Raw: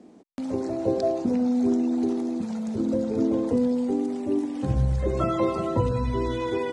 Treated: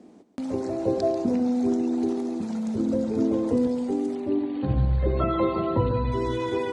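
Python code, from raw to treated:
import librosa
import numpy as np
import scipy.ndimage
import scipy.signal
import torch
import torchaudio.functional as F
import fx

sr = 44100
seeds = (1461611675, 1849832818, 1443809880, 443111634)

y = fx.brickwall_lowpass(x, sr, high_hz=4600.0, at=(4.15, 6.12))
y = fx.echo_feedback(y, sr, ms=140, feedback_pct=28, wet_db=-11.5)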